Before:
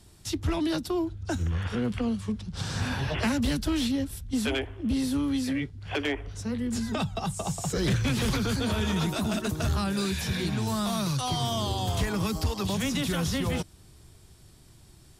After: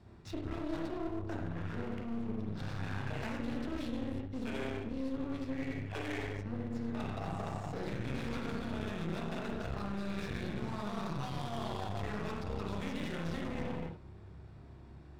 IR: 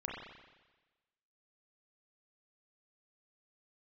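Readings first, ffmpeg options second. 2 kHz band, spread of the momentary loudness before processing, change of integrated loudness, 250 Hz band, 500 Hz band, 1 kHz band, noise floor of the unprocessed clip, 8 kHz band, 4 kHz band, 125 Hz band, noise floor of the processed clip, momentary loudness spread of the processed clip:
−9.5 dB, 5 LU, −10.5 dB, −10.0 dB, −8.0 dB, −8.0 dB, −54 dBFS, −22.0 dB, −16.0 dB, −10.0 dB, −52 dBFS, 2 LU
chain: -filter_complex "[0:a]highpass=frequency=81:poles=1[link_01];[1:a]atrim=start_sample=2205,afade=type=out:start_time=0.4:duration=0.01,atrim=end_sample=18081[link_02];[link_01][link_02]afir=irnorm=-1:irlink=0,adynamicsmooth=sensitivity=4.5:basefreq=2100,bandreject=frequency=3100:width=10,areverse,acompressor=threshold=-35dB:ratio=6,areverse,aeval=exprs='clip(val(0),-1,0.00398)':channel_layout=same,volume=2.5dB"

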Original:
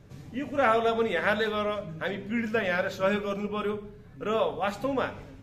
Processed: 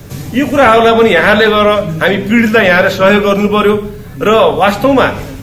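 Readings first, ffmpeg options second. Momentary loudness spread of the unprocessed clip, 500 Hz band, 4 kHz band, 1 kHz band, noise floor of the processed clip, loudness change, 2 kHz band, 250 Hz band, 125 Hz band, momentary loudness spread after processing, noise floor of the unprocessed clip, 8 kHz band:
10 LU, +19.0 dB, +20.5 dB, +18.5 dB, −27 dBFS, +19.0 dB, +19.5 dB, +20.0 dB, +20.5 dB, 7 LU, −48 dBFS, can't be measured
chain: -filter_complex "[0:a]aemphasis=mode=production:type=50fm,acrossover=split=220|480|3800[link_01][link_02][link_03][link_04];[link_04]acompressor=threshold=-54dB:ratio=6[link_05];[link_01][link_02][link_03][link_05]amix=inputs=4:normalize=0,apsyclip=23dB,volume=-1.5dB"

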